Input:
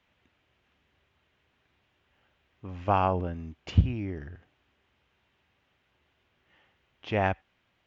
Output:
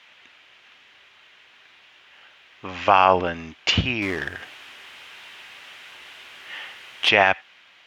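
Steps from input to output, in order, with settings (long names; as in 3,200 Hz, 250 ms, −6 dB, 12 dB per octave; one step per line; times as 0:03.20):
0:04.02–0:07.09: mu-law and A-law mismatch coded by mu
resonant band-pass 3,300 Hz, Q 0.61
boost into a limiter +24 dB
level −1 dB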